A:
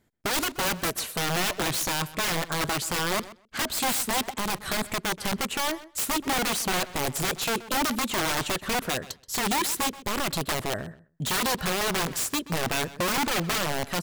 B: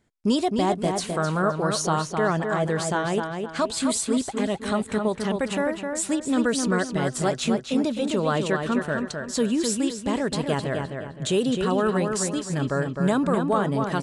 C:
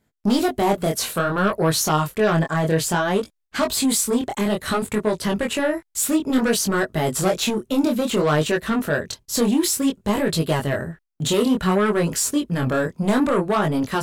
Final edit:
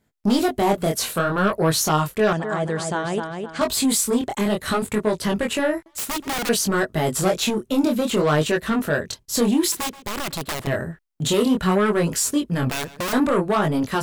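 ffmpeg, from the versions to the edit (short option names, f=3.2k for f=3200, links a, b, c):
-filter_complex "[0:a]asplit=3[a][b][c];[2:a]asplit=5[d][e][f][g][h];[d]atrim=end=2.332[i];[1:a]atrim=start=2.328:end=3.612[j];[e]atrim=start=3.608:end=5.862[k];[a]atrim=start=5.858:end=6.492[l];[f]atrim=start=6.488:end=9.722[m];[b]atrim=start=9.718:end=10.672[n];[g]atrim=start=10.668:end=12.702[o];[c]atrim=start=12.698:end=13.132[p];[h]atrim=start=13.128[q];[i][j]acrossfade=d=0.004:c1=hsin:c2=hsin[r];[r][k]acrossfade=d=0.004:c1=hsin:c2=hsin[s];[s][l]acrossfade=d=0.004:c1=hsin:c2=hsin[t];[t][m]acrossfade=d=0.004:c1=hsin:c2=hsin[u];[u][n]acrossfade=d=0.004:c1=hsin:c2=hsin[v];[v][o]acrossfade=d=0.004:c1=hsin:c2=hsin[w];[w][p]acrossfade=d=0.004:c1=hsin:c2=hsin[x];[x][q]acrossfade=d=0.004:c1=hsin:c2=hsin"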